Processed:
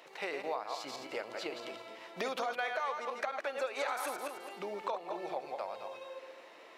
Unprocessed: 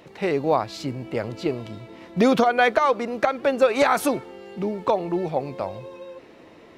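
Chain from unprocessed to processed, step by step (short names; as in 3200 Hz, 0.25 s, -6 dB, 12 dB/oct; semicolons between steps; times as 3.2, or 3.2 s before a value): regenerating reverse delay 0.107 s, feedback 44%, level -5.5 dB; HPF 680 Hz 12 dB/oct; compressor 3:1, threshold -34 dBFS, peak gain reduction 14 dB; gain -2.5 dB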